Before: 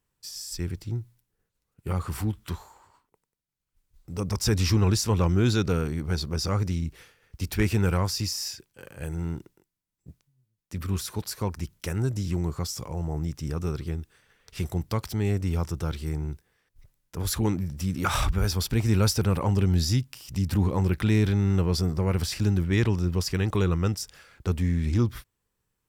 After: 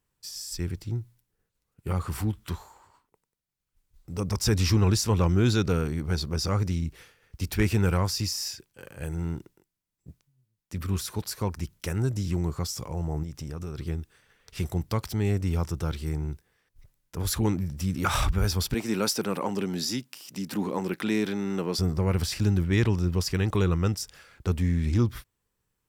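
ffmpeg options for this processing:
-filter_complex "[0:a]asettb=1/sr,asplit=3[a][b][c];[a]atrim=end=13.234[d];[b]atrim=start=13.23:end=13.78,asetpts=PTS-STARTPTS,afade=t=in:d=0.004:c=qsin,afade=t=out:st=0.546:d=0.004:c=qsin,acompressor=threshold=-31dB:ratio=10:attack=3.2:release=140:knee=1:detection=peak[e];[c]atrim=start=13.776[f];[d][e]acrossfade=d=0.004:c1=hsin:c2=qsin[g];[g][f]acrossfade=d=0.004:c1=qsin:c2=hsin,asettb=1/sr,asplit=3[h][i][j];[h]atrim=end=18.744[k];[i]atrim=start=18.74:end=21.79,asetpts=PTS-STARTPTS,afade=t=in:d=0.004:c=qsin,afade=t=out:st=3.046:d=0.004:c=qsin,highpass=f=200:w=0.5412,highpass=f=200:w=1.3066[l];[j]atrim=start=21.786[m];[k][l]acrossfade=d=0.004:c1=hsin:c2=qsin[n];[n][m]acrossfade=d=0.004:c1=qsin:c2=hsin"

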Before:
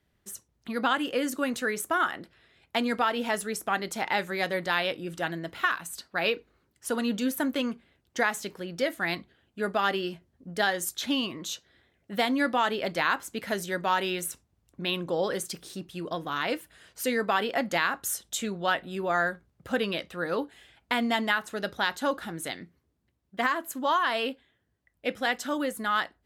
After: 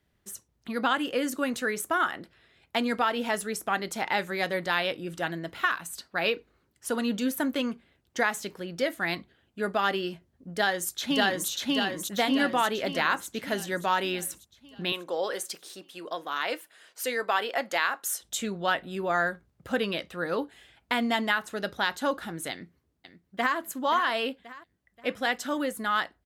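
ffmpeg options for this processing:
-filter_complex "[0:a]asplit=2[a][b];[b]afade=t=in:st=10.51:d=0.01,afade=t=out:st=11.49:d=0.01,aecho=0:1:590|1180|1770|2360|2950|3540|4130|4720:1|0.55|0.3025|0.166375|0.0915063|0.0503284|0.0276806|0.0152244[c];[a][c]amix=inputs=2:normalize=0,asettb=1/sr,asplit=3[d][e][f];[d]atrim=end=14.924[g];[e]atrim=start=14.92:end=18.22,asetpts=PTS-STARTPTS,afade=t=in:d=0.004:c=qsin,afade=t=out:st=3.296:d=0.004:c=qsin,highpass=440[h];[f]atrim=start=18.216[i];[g][h]acrossfade=d=0.004:c1=hsin:c2=qsin[j];[j][i]acrossfade=d=0.004:c1=qsin:c2=hsin,asplit=2[k][l];[l]afade=t=in:st=22.51:d=0.01,afade=t=out:st=23.57:d=0.01,aecho=0:1:530|1060|1590|2120:0.281838|0.112735|0.0450941|0.0180377[m];[k][m]amix=inputs=2:normalize=0"

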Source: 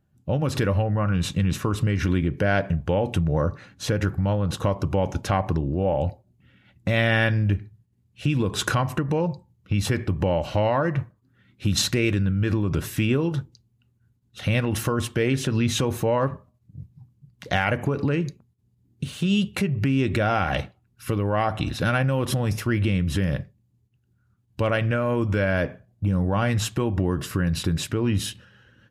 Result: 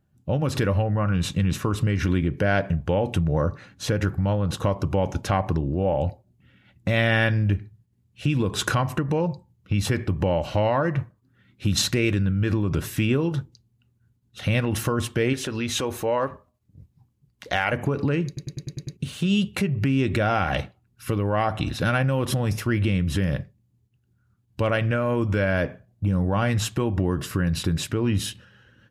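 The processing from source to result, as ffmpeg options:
-filter_complex "[0:a]asettb=1/sr,asplit=3[a][b][c];[a]atrim=end=15.334[d];[b]atrim=start=15.33:end=17.73,asetpts=PTS-STARTPTS,afade=t=in:d=0.004:c=qsin,afade=t=out:st=2.396:d=0.004:c=qsin,equalizer=f=140:t=o:w=1.4:g=-11.5[e];[c]atrim=start=17.726[f];[d][e]acrossfade=d=0.004:c1=hsin:c2=qsin[g];[g][f]acrossfade=d=0.004:c1=qsin:c2=hsin,asplit=8[h][i][j][k][l][m][n][o];[h]atrim=end=18.372[p];[i]atrim=start=18.268:end=18.372[q];[j]atrim=start=18.268:end=18.372[r];[k]atrim=start=18.268:end=18.372[s];[l]atrim=start=18.268:end=18.372[t];[m]atrim=start=18.268:end=18.372[u];[n]atrim=start=18.268:end=18.372[v];[o]atrim=start=18.968[w];[p][q]acrossfade=d=0.004:c1=hsin:c2=hsin[x];[x][r]acrossfade=d=0.004:c1=hsin:c2=hsin[y];[y][s]acrossfade=d=0.004:c1=hsin:c2=hsin[z];[z][t]acrossfade=d=0.004:c1=hsin:c2=hsin[aa];[aa][u]acrossfade=d=0.004:c1=hsin:c2=hsin[ab];[ab][v]acrossfade=d=0.004:c1=hsin:c2=hsin[ac];[ac][w]acrossfade=d=0.004:c1=hsin:c2=hsin"

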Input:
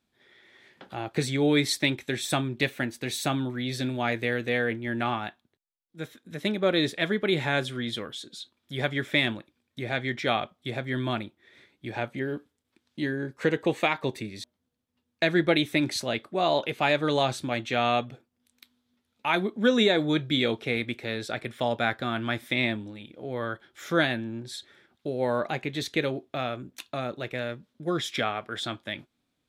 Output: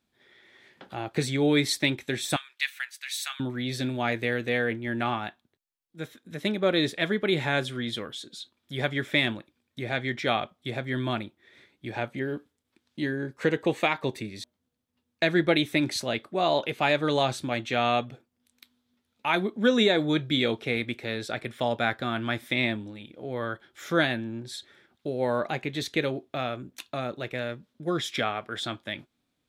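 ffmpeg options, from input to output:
-filter_complex "[0:a]asettb=1/sr,asplit=3[a][b][c];[a]atrim=end=2.364[d];[b]atrim=start=2.36:end=3.4,asetpts=PTS-STARTPTS,afade=t=in:d=0.004:c=qsin,afade=t=out:st=1.036:d=0.004:c=qsin,highpass=f=1.4k:w=0.5412,highpass=f=1.4k:w=1.3066[e];[c]atrim=start=3.396[f];[d][e]acrossfade=d=0.004:c1=hsin:c2=qsin[g];[g][f]acrossfade=d=0.004:c1=qsin:c2=hsin"

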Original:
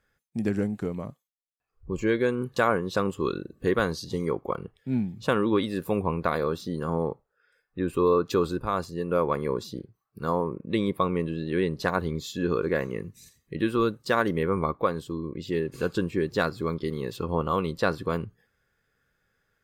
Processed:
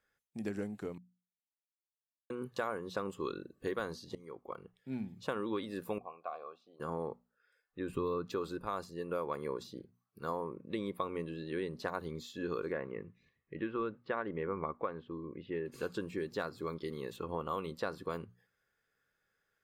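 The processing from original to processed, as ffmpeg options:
-filter_complex "[0:a]asettb=1/sr,asplit=3[a][b][c];[a]atrim=end=5.984[d];[b]atrim=start=5.98:end=6.8,asetpts=PTS-STARTPTS,afade=t=in:d=0.004:c=qsin,afade=t=out:st=0.816:d=0.004:c=qsin,asplit=3[e][f][g];[e]bandpass=f=730:t=q:w=8,volume=0dB[h];[f]bandpass=f=1.09k:t=q:w=8,volume=-6dB[i];[g]bandpass=f=2.44k:t=q:w=8,volume=-9dB[j];[h][i][j]amix=inputs=3:normalize=0[k];[c]atrim=start=6.796[l];[d][k]acrossfade=d=0.004:c1=hsin:c2=qsin[m];[m][l]acrossfade=d=0.004:c1=qsin:c2=hsin,asettb=1/sr,asplit=3[n][o][p];[n]atrim=end=7.894[q];[o]atrim=start=7.89:end=8.31,asetpts=PTS-STARTPTS,afade=t=in:d=0.004:c=qsin,afade=t=out:st=0.416:d=0.004:c=qsin,bass=f=250:g=11,treble=f=4k:g=-5[r];[p]atrim=start=8.306[s];[q][r]acrossfade=d=0.004:c1=hsin:c2=qsin[t];[t][s]acrossfade=d=0.004:c1=qsin:c2=hsin,asettb=1/sr,asplit=3[u][v][w];[u]atrim=end=12.724[x];[v]atrim=start=12.72:end=15.66,asetpts=PTS-STARTPTS,afade=t=in:d=0.004:c=qsin,afade=t=out:st=2.936:d=0.004:c=qsin,lowpass=f=2.6k:w=0.5412,lowpass=f=2.6k:w=1.3066[y];[w]atrim=start=15.656[z];[x][y]acrossfade=d=0.004:c1=hsin:c2=qsin[aa];[aa][z]acrossfade=d=0.004:c1=qsin:c2=hsin,asettb=1/sr,asplit=3[ab][ac][ad];[ab]atrim=end=17.104[ae];[ac]atrim=start=17.1:end=17.73,asetpts=PTS-STARTPTS,afade=t=in:d=0.004:c=qsin,afade=t=out:st=0.626:d=0.004:c=qsin,equalizer=f=4.9k:t=o:w=0.3:g=-9.5[af];[ad]atrim=start=17.726[ag];[ae][af]acrossfade=d=0.004:c1=hsin:c2=qsin[ah];[ah][ag]acrossfade=d=0.004:c1=qsin:c2=hsin,asplit=4[ai][aj][ak][al];[ai]atrim=end=0.98,asetpts=PTS-STARTPTS,afade=t=out:st=0.976:d=0.004:c=hsin[am];[aj]atrim=start=0.98:end=2.3,asetpts=PTS-STARTPTS,volume=0[an];[ak]atrim=start=2.3:end=4.15,asetpts=PTS-STARTPTS,afade=t=in:d=0.004:c=hsin,afade=t=out:st=1.846:d=0.004:c=hsin:silence=0.0891251[ao];[al]atrim=start=4.15,asetpts=PTS-STARTPTS,afade=t=in:d=0.82:silence=0.0891251[ap];[am][an][ao][ap]concat=n=4:v=0:a=1,lowshelf=f=210:g=-9.5,bandreject=f=60:t=h:w=6,bandreject=f=120:t=h:w=6,bandreject=f=180:t=h:w=6,bandreject=f=240:t=h:w=6,acrossover=split=1700|3500[aq][ar][as];[aq]acompressor=threshold=-26dB:ratio=4[at];[ar]acompressor=threshold=-47dB:ratio=4[au];[as]acompressor=threshold=-48dB:ratio=4[av];[at][au][av]amix=inputs=3:normalize=0,volume=-6.5dB"

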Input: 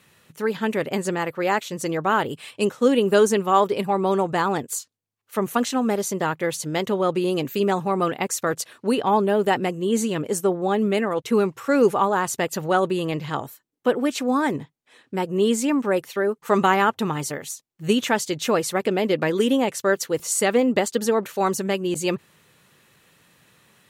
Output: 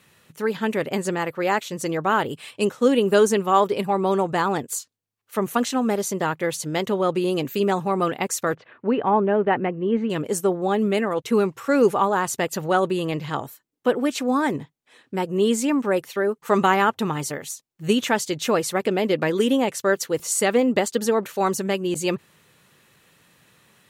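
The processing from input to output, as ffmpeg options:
-filter_complex "[0:a]asettb=1/sr,asplit=3[a][b][c];[a]atrim=end=8.554[d];[b]atrim=start=8.55:end=10.1,asetpts=PTS-STARTPTS,afade=t=in:d=0.004:c=qsin,afade=t=out:st=1.546:d=0.004:c=qsin,lowpass=f=2.4k:w=0.5412,lowpass=f=2.4k:w=1.3066[e];[c]atrim=start=10.096[f];[d][e]acrossfade=d=0.004:c1=hsin:c2=qsin[g];[g][f]acrossfade=d=0.004:c1=qsin:c2=hsin"

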